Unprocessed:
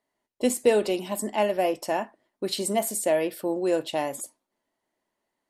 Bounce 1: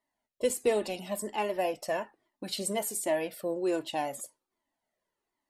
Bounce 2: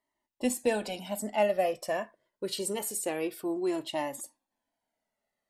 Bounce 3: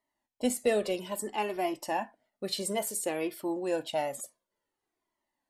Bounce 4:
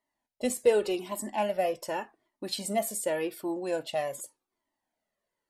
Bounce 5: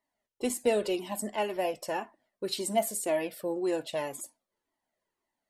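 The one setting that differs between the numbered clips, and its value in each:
cascading flanger, rate: 1.3, 0.26, 0.58, 0.86, 1.9 Hz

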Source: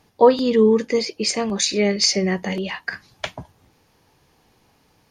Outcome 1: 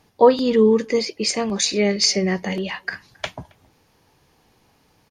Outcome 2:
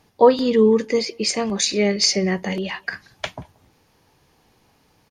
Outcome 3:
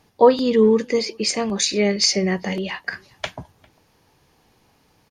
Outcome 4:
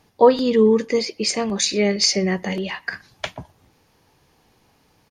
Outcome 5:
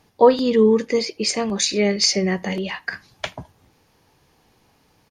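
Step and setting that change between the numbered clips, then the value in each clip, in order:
speakerphone echo, time: 270, 180, 400, 120, 80 ms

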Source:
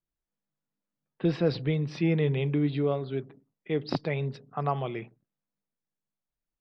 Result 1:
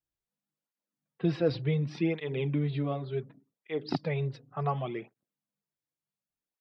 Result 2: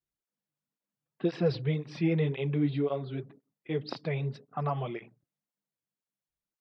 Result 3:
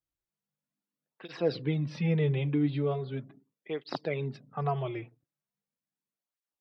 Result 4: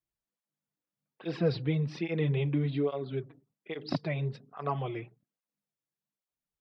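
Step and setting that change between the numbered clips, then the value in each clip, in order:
tape flanging out of phase, nulls at: 0.68, 1.9, 0.39, 1.2 Hz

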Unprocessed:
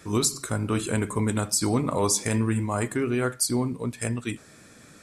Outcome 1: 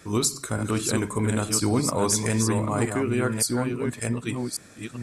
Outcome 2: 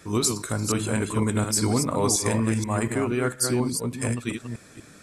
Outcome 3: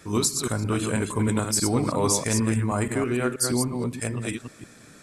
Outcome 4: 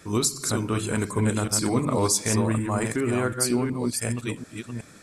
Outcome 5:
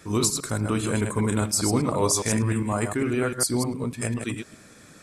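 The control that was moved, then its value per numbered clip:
reverse delay, time: 0.571, 0.24, 0.16, 0.37, 0.101 s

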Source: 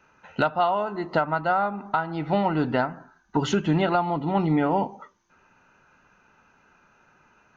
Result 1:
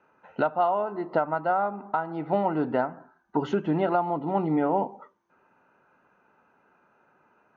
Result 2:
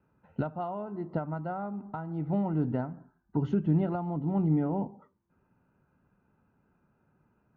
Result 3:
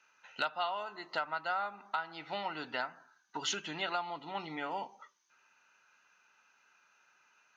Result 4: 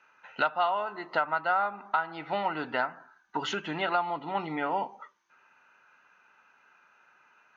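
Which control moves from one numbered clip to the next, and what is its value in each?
band-pass, frequency: 520, 110, 5300, 2000 Hz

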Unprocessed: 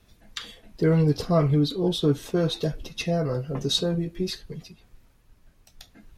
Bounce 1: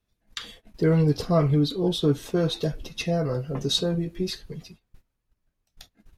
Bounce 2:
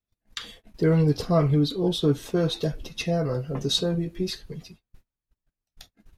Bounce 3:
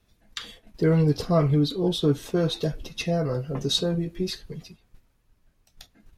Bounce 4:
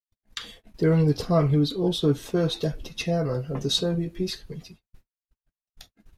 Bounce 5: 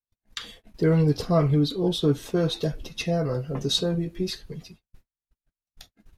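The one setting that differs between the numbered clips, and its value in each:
gate, range: -19, -31, -7, -57, -44 dB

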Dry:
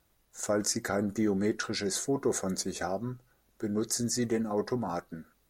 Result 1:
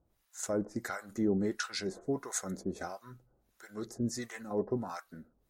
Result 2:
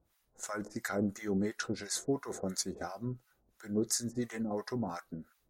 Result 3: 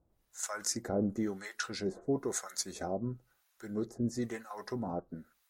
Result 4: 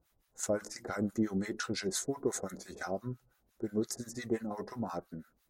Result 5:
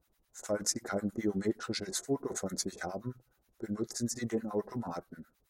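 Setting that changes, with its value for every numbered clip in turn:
harmonic tremolo, rate: 1.5, 2.9, 1, 5.8, 9.4 Hz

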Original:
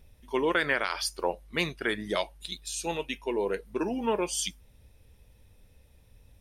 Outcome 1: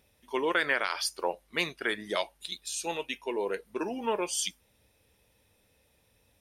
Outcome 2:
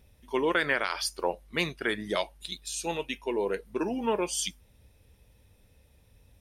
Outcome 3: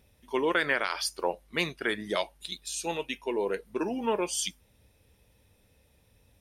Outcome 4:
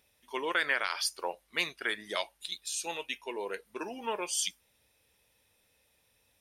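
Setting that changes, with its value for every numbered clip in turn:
HPF, cutoff: 380, 49, 140, 1100 Hz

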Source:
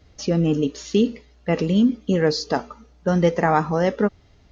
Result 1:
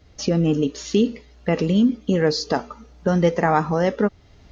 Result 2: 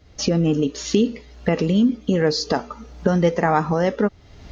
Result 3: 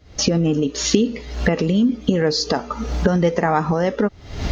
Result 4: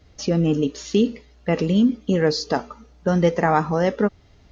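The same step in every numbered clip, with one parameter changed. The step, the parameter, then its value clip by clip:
recorder AGC, rising by: 14, 34, 84, 5.1 dB/s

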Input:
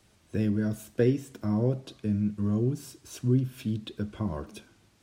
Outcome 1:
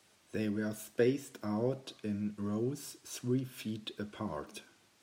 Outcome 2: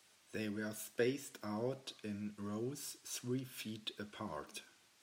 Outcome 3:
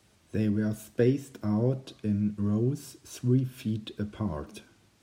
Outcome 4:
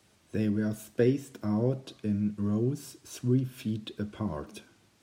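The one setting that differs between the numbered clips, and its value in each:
HPF, cutoff: 500, 1300, 43, 120 Hz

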